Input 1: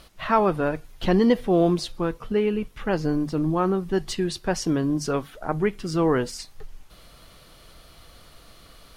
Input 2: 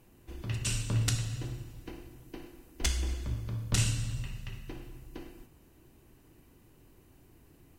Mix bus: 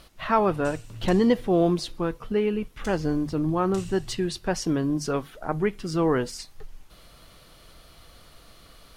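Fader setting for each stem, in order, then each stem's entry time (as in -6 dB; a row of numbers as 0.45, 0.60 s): -1.5, -12.5 dB; 0.00, 0.00 s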